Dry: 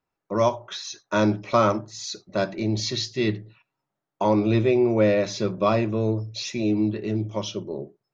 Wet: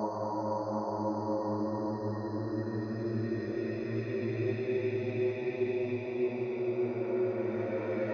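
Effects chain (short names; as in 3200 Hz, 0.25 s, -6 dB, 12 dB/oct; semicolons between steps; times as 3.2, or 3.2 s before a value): spectral delete 2.76–4.67, 1900–4000 Hz; rippled Chebyshev low-pass 6400 Hz, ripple 6 dB; Paulstretch 11×, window 0.50 s, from 4.23; gain -7.5 dB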